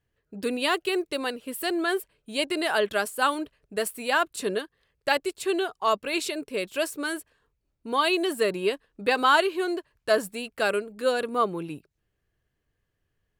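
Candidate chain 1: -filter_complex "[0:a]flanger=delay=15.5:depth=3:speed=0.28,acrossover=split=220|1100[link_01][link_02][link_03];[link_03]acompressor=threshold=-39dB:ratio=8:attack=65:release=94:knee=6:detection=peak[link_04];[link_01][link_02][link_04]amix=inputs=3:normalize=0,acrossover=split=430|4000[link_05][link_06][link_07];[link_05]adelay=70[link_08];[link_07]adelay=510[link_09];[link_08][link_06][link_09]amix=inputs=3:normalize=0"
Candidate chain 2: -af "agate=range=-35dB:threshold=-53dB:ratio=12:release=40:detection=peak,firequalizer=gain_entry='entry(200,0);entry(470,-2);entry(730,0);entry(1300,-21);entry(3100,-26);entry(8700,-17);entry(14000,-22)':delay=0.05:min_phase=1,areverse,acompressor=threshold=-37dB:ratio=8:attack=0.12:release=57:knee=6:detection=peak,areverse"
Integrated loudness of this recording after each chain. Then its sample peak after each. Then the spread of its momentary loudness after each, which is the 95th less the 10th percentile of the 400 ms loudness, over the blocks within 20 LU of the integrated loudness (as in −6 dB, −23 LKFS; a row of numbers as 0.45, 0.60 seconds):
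−32.5, −43.0 LKFS; −14.5, −34.0 dBFS; 8, 5 LU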